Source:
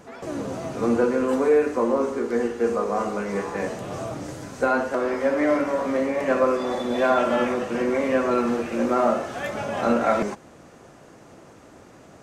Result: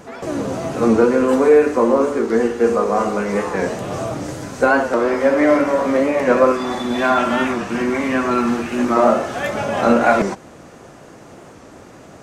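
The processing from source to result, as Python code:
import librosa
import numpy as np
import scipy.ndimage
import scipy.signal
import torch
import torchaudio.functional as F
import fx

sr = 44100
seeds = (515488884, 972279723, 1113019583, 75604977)

y = fx.peak_eq(x, sr, hz=520.0, db=-12.0, octaves=0.58, at=(6.52, 8.97))
y = fx.record_warp(y, sr, rpm=45.0, depth_cents=100.0)
y = F.gain(torch.from_numpy(y), 7.0).numpy()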